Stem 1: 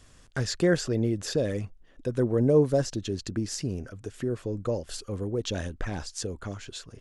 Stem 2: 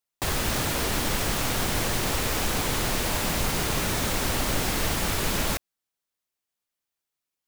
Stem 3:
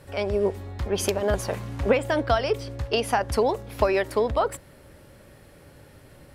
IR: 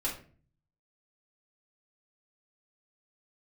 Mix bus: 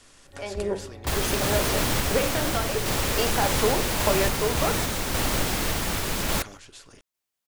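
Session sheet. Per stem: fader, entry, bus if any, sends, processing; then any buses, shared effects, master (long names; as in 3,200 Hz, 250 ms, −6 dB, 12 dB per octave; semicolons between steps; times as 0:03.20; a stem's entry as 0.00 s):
−0.5 dB, 0.00 s, send −11 dB, downward compressor, threshold −33 dBFS, peak gain reduction 16.5 dB; every bin compressed towards the loudest bin 2 to 1
+2.5 dB, 0.85 s, no send, no processing
−5.0 dB, 0.25 s, send −7 dB, no processing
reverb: on, RT60 0.40 s, pre-delay 3 ms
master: sample-and-hold tremolo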